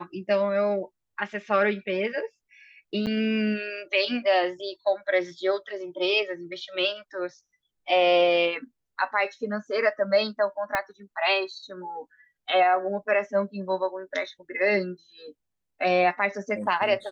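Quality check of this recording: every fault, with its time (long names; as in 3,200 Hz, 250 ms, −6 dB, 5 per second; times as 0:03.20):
0:03.06–0:03.07: drop-out 8.3 ms
0:10.75: click −11 dBFS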